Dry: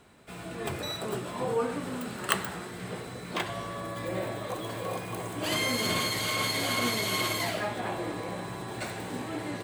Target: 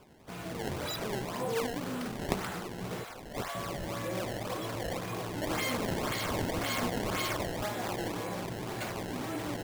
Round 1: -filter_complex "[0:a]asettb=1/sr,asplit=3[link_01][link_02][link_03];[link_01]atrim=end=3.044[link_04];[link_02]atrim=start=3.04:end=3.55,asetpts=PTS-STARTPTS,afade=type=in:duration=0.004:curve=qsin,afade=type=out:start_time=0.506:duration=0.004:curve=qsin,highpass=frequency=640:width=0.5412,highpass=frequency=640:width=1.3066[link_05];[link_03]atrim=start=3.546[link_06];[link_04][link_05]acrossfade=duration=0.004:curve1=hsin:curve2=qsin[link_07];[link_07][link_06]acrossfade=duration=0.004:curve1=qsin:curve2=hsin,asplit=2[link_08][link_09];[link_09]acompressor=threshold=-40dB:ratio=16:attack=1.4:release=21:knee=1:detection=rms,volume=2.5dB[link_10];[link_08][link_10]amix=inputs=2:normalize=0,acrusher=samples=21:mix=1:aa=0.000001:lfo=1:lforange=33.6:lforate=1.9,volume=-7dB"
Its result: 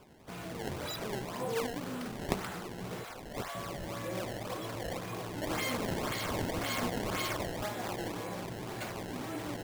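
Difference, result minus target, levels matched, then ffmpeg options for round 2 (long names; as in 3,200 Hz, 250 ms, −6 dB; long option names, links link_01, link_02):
downward compressor: peak gain reduction +6.5 dB
-filter_complex "[0:a]asettb=1/sr,asplit=3[link_01][link_02][link_03];[link_01]atrim=end=3.044[link_04];[link_02]atrim=start=3.04:end=3.55,asetpts=PTS-STARTPTS,afade=type=in:duration=0.004:curve=qsin,afade=type=out:start_time=0.506:duration=0.004:curve=qsin,highpass=frequency=640:width=0.5412,highpass=frequency=640:width=1.3066[link_05];[link_03]atrim=start=3.546[link_06];[link_04][link_05]acrossfade=duration=0.004:curve1=hsin:curve2=qsin[link_07];[link_07][link_06]acrossfade=duration=0.004:curve1=qsin:curve2=hsin,asplit=2[link_08][link_09];[link_09]acompressor=threshold=-33dB:ratio=16:attack=1.4:release=21:knee=1:detection=rms,volume=2.5dB[link_10];[link_08][link_10]amix=inputs=2:normalize=0,acrusher=samples=21:mix=1:aa=0.000001:lfo=1:lforange=33.6:lforate=1.9,volume=-7dB"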